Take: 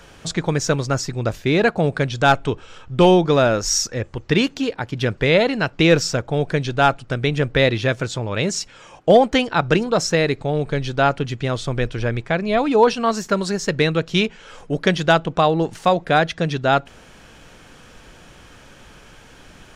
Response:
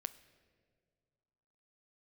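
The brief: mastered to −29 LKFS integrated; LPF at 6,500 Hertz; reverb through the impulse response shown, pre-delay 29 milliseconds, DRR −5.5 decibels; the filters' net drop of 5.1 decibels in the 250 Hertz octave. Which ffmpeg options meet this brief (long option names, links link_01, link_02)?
-filter_complex "[0:a]lowpass=6500,equalizer=frequency=250:width_type=o:gain=-8,asplit=2[link_01][link_02];[1:a]atrim=start_sample=2205,adelay=29[link_03];[link_02][link_03]afir=irnorm=-1:irlink=0,volume=8dB[link_04];[link_01][link_04]amix=inputs=2:normalize=0,volume=-14.5dB"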